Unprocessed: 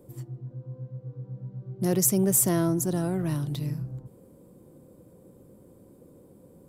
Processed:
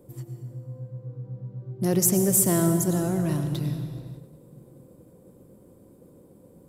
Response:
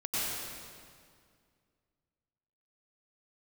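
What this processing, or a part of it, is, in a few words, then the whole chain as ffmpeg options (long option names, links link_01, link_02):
keyed gated reverb: -filter_complex "[0:a]asplit=3[link_01][link_02][link_03];[1:a]atrim=start_sample=2205[link_04];[link_02][link_04]afir=irnorm=-1:irlink=0[link_05];[link_03]apad=whole_len=295011[link_06];[link_05][link_06]sidechaingate=range=-33dB:threshold=-51dB:ratio=16:detection=peak,volume=-13dB[link_07];[link_01][link_07]amix=inputs=2:normalize=0"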